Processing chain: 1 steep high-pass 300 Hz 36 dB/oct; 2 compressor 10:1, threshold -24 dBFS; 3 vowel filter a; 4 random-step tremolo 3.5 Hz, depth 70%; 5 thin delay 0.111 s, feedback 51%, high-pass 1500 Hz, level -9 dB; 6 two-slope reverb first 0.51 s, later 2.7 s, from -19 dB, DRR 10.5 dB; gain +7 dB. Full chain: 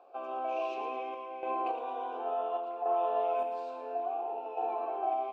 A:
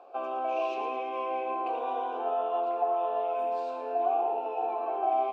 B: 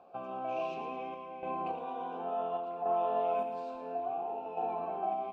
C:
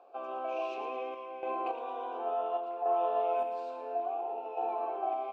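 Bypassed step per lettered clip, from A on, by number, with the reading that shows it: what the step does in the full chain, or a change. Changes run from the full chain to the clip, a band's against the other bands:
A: 4, momentary loudness spread change -3 LU; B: 1, 250 Hz band +4.0 dB; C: 6, echo-to-direct -7.5 dB to -10.5 dB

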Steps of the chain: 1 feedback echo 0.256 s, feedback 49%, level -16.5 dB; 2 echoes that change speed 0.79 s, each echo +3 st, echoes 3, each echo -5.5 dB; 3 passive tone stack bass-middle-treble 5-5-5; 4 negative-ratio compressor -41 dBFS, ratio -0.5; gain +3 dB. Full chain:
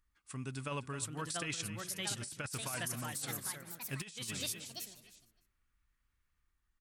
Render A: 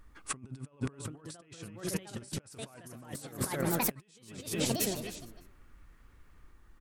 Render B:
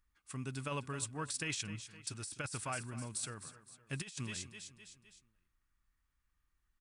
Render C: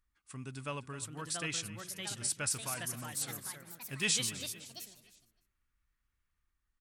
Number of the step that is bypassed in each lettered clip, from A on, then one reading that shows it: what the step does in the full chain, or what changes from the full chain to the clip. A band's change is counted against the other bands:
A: 3, 250 Hz band +6.0 dB; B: 2, crest factor change +1.5 dB; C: 4, crest factor change +3.5 dB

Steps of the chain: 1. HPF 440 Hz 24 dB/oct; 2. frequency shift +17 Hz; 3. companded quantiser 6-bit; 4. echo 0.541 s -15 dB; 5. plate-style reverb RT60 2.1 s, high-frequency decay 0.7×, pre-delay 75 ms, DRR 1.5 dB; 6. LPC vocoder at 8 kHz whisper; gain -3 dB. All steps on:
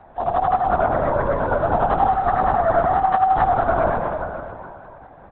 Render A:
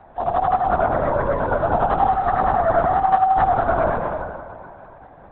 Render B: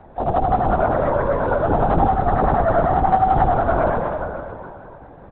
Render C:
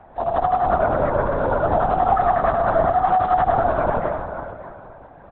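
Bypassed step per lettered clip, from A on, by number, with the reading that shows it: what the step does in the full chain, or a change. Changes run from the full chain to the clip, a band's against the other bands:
4, momentary loudness spread change -2 LU; 1, 125 Hz band +5.5 dB; 2, crest factor change -1.5 dB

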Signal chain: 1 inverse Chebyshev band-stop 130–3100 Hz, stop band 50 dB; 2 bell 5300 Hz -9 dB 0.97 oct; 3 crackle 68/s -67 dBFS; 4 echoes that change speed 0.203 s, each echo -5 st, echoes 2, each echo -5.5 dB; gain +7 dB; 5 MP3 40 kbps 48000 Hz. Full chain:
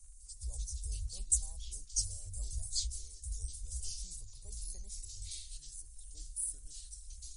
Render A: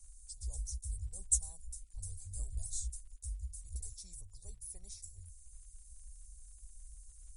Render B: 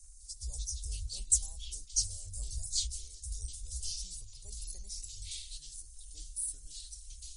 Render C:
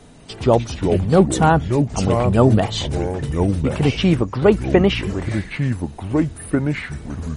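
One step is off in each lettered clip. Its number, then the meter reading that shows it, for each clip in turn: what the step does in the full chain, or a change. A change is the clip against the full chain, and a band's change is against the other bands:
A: 4, 4 kHz band -12.5 dB; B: 2, loudness change +2.5 LU; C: 1, 8 kHz band -38.5 dB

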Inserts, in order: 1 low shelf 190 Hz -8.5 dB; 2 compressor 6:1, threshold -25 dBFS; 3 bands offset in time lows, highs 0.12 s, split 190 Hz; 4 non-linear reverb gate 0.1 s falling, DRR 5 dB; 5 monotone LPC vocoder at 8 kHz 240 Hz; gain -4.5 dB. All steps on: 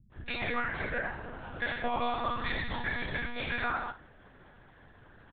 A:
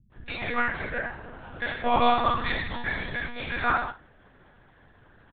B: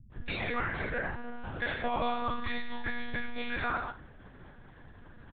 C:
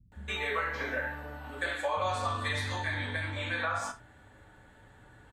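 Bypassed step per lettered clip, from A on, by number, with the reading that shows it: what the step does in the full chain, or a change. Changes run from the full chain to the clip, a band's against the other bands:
2, mean gain reduction 2.5 dB; 1, 4 kHz band -2.0 dB; 5, 250 Hz band -5.5 dB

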